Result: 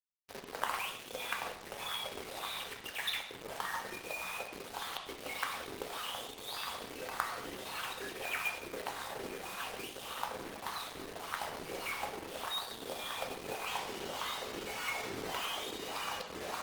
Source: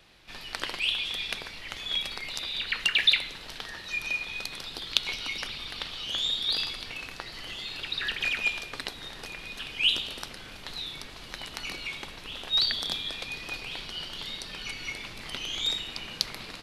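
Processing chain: notches 60/120/180/240/300/360/420/480 Hz; 4.24–4.98 low shelf 200 Hz -5.5 dB; compressor 2.5:1, threshold -32 dBFS, peak gain reduction 11 dB; wah 1.7 Hz 330–1200 Hz, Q 3.3; companded quantiser 4-bit; reverb, pre-delay 3 ms, DRR 2 dB; gain +11 dB; Opus 24 kbps 48000 Hz

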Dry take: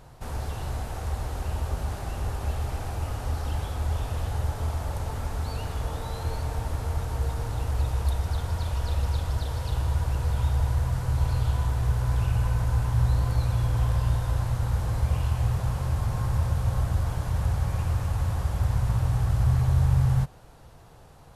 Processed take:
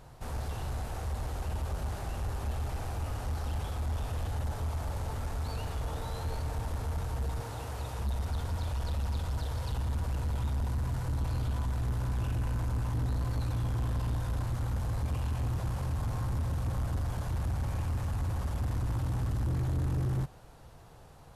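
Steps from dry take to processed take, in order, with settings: 7.4–7.99 HPF 190 Hz 6 dB/oct; soft clip -24.5 dBFS, distortion -11 dB; gain -2.5 dB

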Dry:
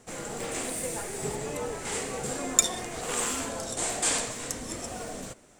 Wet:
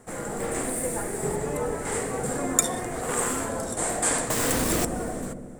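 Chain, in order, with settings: band shelf 4000 Hz -10 dB; 4.3–4.85 companded quantiser 2-bit; dark delay 90 ms, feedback 75%, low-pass 420 Hz, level -6 dB; gain +4.5 dB

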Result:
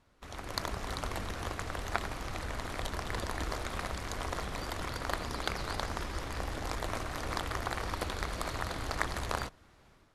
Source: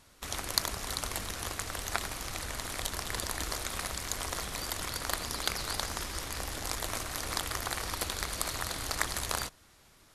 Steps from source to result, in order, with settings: LPF 1500 Hz 6 dB/oct; AGC gain up to 8 dB; gain -5 dB

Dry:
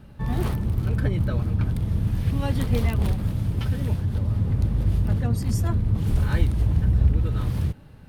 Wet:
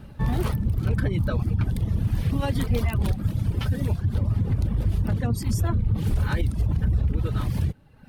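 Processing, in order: reverb removal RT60 0.98 s; limiter -19 dBFS, peak gain reduction 11 dB; gain +4 dB

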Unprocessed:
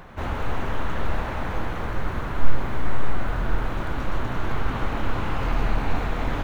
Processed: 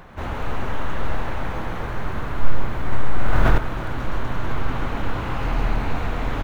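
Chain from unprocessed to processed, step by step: feedback echo 0.134 s, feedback 52%, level -9 dB; 2.92–3.58 fast leveller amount 70%

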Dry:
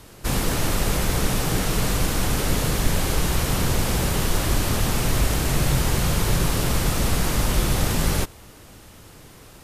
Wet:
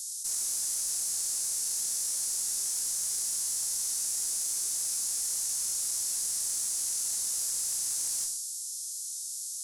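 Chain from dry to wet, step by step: inverse Chebyshev high-pass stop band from 3000 Hz, stop band 50 dB; Schroeder reverb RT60 0.56 s, combs from 32 ms, DRR 4 dB; tube stage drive 25 dB, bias 0.2; formant shift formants -4 st; fast leveller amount 70%; gain +2 dB

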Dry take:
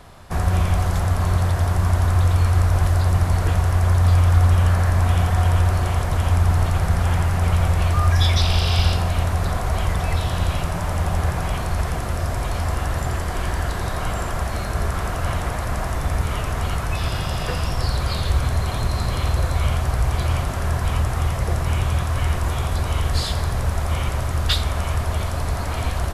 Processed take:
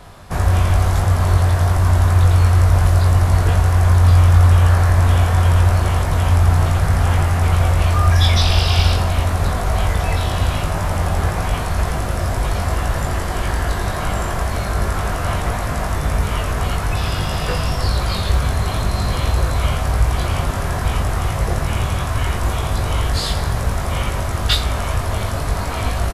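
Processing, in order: doubler 20 ms -4 dB; gain +2.5 dB

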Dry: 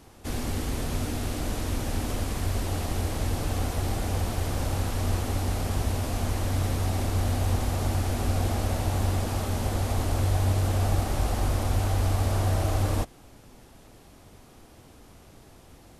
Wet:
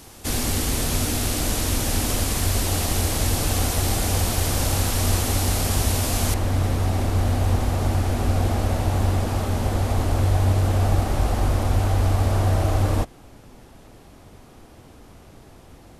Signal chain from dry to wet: high shelf 3000 Hz +10 dB, from 6.34 s -4.5 dB; gain +5 dB

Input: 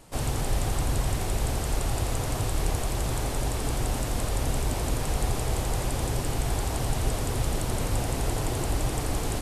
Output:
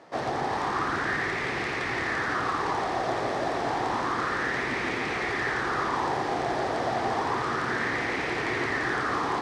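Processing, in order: median filter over 5 samples; speaker cabinet 230–8100 Hz, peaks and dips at 360 Hz +4 dB, 590 Hz -5 dB, 1200 Hz +5 dB, 1800 Hz +9 dB, 2800 Hz -4 dB, 7200 Hz -6 dB; split-band echo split 740 Hz, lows 0.13 s, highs 0.369 s, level -5 dB; LFO bell 0.3 Hz 630–2300 Hz +11 dB

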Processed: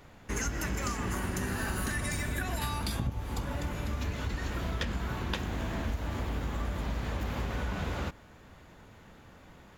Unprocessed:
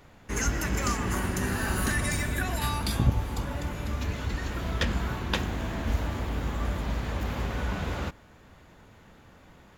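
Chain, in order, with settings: compressor 6:1, threshold -29 dBFS, peak gain reduction 12 dB

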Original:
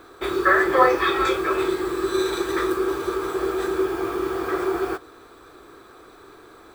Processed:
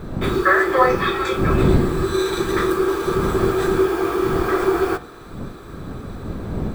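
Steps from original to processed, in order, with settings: wind noise 230 Hz -27 dBFS; vocal rider 2 s; de-hum 119.8 Hz, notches 34; gain +2 dB

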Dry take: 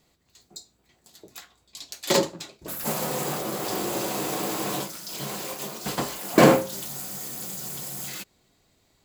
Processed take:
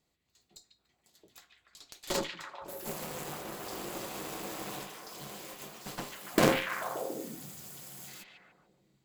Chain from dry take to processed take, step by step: added harmonics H 3 -17 dB, 6 -15 dB, 8 -14 dB, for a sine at -3.5 dBFS; delay with a stepping band-pass 0.144 s, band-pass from 2500 Hz, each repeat -0.7 oct, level -0.5 dB; gain -8 dB

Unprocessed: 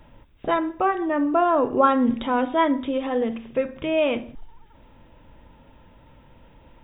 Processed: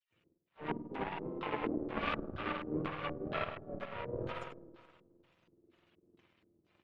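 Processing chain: spectrum mirrored in octaves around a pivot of 550 Hz; tube stage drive 17 dB, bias 0.8; reverse; compressor 5:1, threshold -42 dBFS, peak gain reduction 20 dB; reverse; dispersion lows, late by 0.124 s, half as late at 1400 Hz; on a send: feedback echo 90 ms, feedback 35%, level -8.5 dB; on the sum: spring tank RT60 2.7 s, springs 52 ms, chirp 20 ms, DRR -1 dB; power-law curve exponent 2; LFO low-pass square 2.1 Hz 350–2800 Hz; harmoniser -5 st -10 dB, +4 st -10 dB; gain +8.5 dB

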